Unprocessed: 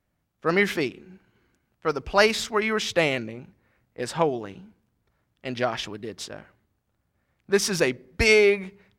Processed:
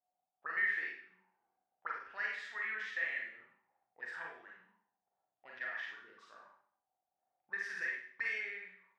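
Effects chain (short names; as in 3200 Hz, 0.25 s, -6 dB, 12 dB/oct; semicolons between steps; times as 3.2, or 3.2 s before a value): compressor 5:1, threshold -21 dBFS, peak gain reduction 8 dB; auto-wah 740–1800 Hz, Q 14, up, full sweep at -27.5 dBFS; Schroeder reverb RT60 0.55 s, combs from 33 ms, DRR -2.5 dB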